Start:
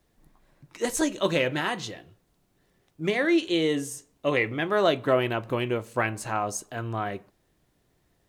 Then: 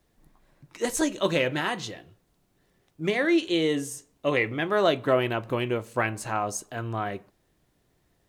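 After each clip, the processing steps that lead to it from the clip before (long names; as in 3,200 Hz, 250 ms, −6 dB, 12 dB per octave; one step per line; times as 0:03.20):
no processing that can be heard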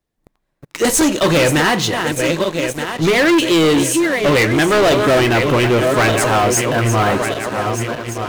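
feedback delay that plays each chunk backwards 612 ms, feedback 64%, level −10 dB
leveller curve on the samples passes 5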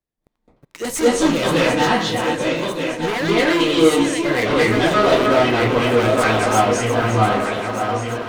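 convolution reverb RT60 0.45 s, pre-delay 209 ms, DRR −7.5 dB
level −10.5 dB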